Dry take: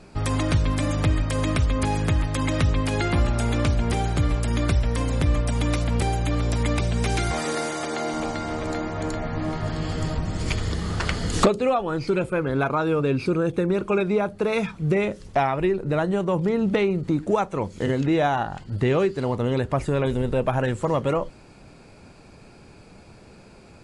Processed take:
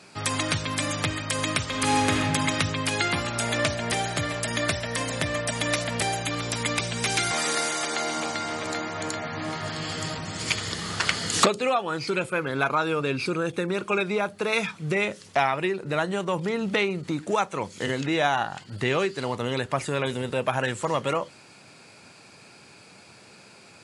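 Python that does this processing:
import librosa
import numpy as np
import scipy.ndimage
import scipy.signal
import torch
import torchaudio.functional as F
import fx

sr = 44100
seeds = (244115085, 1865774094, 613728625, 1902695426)

y = fx.reverb_throw(x, sr, start_s=1.62, length_s=0.5, rt60_s=2.3, drr_db=-2.5)
y = fx.small_body(y, sr, hz=(630.0, 1800.0), ring_ms=45, db=11, at=(3.42, 6.23))
y = scipy.signal.sosfilt(scipy.signal.butter(4, 100.0, 'highpass', fs=sr, output='sos'), y)
y = fx.tilt_shelf(y, sr, db=-7.0, hz=970.0)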